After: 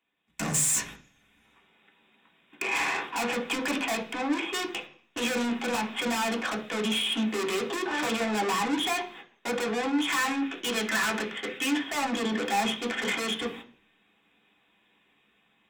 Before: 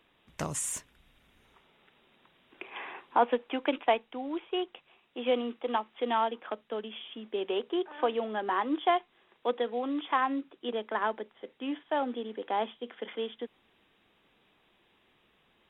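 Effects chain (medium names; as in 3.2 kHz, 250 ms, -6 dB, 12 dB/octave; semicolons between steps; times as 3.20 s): gate -55 dBFS, range -22 dB; 10.08–11.71 s: high-order bell 2.1 kHz +9.5 dB; level rider gain up to 14 dB; saturation -35 dBFS, distortion 0 dB; reverberation RT60 0.45 s, pre-delay 3 ms, DRR 0.5 dB; trim +7 dB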